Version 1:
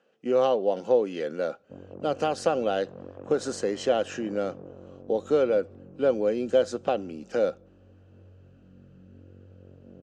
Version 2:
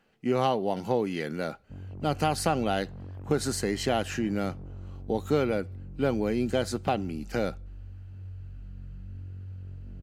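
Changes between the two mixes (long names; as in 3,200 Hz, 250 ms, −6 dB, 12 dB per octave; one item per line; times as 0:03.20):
background −6.5 dB
master: remove loudspeaker in its box 270–7,100 Hz, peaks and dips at 520 Hz +10 dB, 890 Hz −5 dB, 2,100 Hz −9 dB, 4,400 Hz −7 dB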